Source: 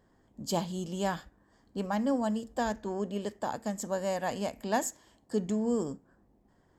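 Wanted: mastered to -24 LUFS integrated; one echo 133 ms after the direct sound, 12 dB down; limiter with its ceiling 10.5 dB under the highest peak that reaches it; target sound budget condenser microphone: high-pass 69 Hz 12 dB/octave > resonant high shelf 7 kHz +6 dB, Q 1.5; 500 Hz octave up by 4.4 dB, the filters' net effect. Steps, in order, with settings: peaking EQ 500 Hz +5.5 dB; peak limiter -25 dBFS; high-pass 69 Hz 12 dB/octave; resonant high shelf 7 kHz +6 dB, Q 1.5; delay 133 ms -12 dB; trim +10.5 dB

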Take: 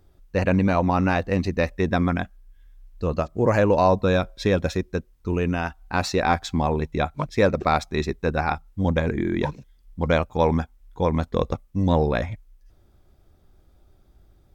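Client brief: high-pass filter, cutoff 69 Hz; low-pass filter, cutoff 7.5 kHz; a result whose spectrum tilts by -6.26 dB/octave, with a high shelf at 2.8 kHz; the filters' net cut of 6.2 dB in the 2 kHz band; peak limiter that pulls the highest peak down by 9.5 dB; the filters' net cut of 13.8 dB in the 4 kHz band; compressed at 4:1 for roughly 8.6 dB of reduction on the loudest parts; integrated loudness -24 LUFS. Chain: high-pass 69 Hz; low-pass 7.5 kHz; peaking EQ 2 kHz -3.5 dB; treble shelf 2.8 kHz -8.5 dB; peaking EQ 4 kHz -8.5 dB; compression 4:1, threshold -26 dBFS; trim +11 dB; peak limiter -12.5 dBFS

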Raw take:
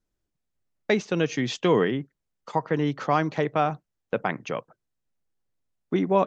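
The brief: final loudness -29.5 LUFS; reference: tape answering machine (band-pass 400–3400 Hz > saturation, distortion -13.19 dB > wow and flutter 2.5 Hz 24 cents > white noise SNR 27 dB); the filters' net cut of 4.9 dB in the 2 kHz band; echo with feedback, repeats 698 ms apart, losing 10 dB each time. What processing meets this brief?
band-pass 400–3400 Hz; peaking EQ 2 kHz -5.5 dB; feedback delay 698 ms, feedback 32%, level -10 dB; saturation -19.5 dBFS; wow and flutter 2.5 Hz 24 cents; white noise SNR 27 dB; trim +2.5 dB

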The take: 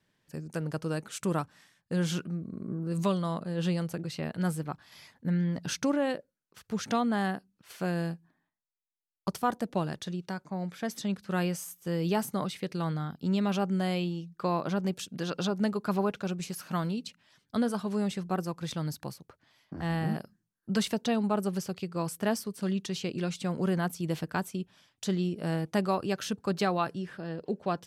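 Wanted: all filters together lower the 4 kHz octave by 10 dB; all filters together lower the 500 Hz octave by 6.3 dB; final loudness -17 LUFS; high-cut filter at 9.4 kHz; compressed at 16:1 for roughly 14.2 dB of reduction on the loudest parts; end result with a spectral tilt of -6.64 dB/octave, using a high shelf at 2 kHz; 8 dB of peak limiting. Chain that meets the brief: low-pass 9.4 kHz; peaking EQ 500 Hz -8 dB; treble shelf 2 kHz -5.5 dB; peaking EQ 4 kHz -7.5 dB; compression 16:1, threshold -40 dBFS; trim +30 dB; peak limiter -7 dBFS

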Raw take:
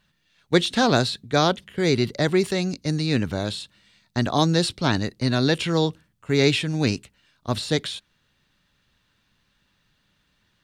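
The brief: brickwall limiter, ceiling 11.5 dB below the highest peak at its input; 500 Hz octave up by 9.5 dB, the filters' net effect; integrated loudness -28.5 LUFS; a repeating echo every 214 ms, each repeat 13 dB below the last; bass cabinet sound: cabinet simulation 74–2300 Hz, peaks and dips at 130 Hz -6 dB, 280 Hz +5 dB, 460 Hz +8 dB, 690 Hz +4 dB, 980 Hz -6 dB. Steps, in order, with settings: peaking EQ 500 Hz +5 dB; peak limiter -13.5 dBFS; cabinet simulation 74–2300 Hz, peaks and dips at 130 Hz -6 dB, 280 Hz +5 dB, 460 Hz +8 dB, 690 Hz +4 dB, 980 Hz -6 dB; feedback delay 214 ms, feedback 22%, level -13 dB; trim -6 dB

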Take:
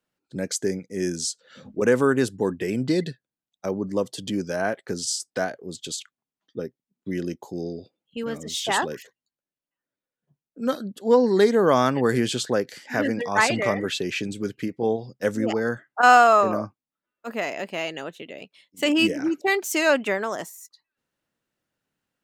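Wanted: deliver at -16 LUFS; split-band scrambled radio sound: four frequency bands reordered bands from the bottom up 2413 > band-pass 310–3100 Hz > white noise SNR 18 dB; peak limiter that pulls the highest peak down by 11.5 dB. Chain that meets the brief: peak limiter -15 dBFS; four frequency bands reordered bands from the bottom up 2413; band-pass 310–3100 Hz; white noise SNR 18 dB; trim +12 dB

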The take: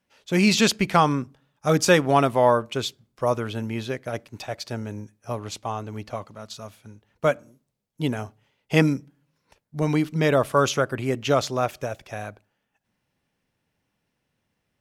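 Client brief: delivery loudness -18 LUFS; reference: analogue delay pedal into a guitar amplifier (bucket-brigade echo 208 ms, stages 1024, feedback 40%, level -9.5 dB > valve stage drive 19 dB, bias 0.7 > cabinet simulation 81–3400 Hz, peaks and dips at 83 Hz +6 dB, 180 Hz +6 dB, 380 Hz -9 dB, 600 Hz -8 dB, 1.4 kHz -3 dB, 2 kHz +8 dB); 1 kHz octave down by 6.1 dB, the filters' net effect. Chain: peaking EQ 1 kHz -6 dB; bucket-brigade echo 208 ms, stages 1024, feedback 40%, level -9.5 dB; valve stage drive 19 dB, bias 0.7; cabinet simulation 81–3400 Hz, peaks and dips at 83 Hz +6 dB, 180 Hz +6 dB, 380 Hz -9 dB, 600 Hz -8 dB, 1.4 kHz -3 dB, 2 kHz +8 dB; trim +12.5 dB

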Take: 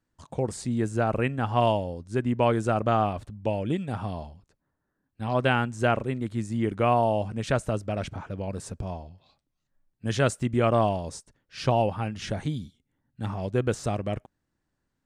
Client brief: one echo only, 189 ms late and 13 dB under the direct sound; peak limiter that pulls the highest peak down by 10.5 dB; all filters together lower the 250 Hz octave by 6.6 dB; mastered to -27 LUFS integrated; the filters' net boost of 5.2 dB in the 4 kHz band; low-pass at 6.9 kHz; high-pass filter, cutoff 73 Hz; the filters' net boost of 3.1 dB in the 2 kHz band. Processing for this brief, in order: high-pass 73 Hz; low-pass 6.9 kHz; peaking EQ 250 Hz -8.5 dB; peaking EQ 2 kHz +3 dB; peaking EQ 4 kHz +6.5 dB; peak limiter -18 dBFS; delay 189 ms -13 dB; trim +4.5 dB

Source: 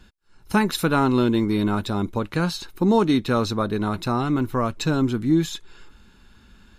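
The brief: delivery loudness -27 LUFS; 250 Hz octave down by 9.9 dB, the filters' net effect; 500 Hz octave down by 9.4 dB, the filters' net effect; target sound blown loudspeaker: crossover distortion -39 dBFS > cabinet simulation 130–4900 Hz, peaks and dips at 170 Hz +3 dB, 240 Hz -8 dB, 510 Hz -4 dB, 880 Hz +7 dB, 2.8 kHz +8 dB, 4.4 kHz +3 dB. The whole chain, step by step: peaking EQ 250 Hz -7 dB; peaking EQ 500 Hz -8 dB; crossover distortion -39 dBFS; cabinet simulation 130–4900 Hz, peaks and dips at 170 Hz +3 dB, 240 Hz -8 dB, 510 Hz -4 dB, 880 Hz +7 dB, 2.8 kHz +8 dB, 4.4 kHz +3 dB; trim +1 dB

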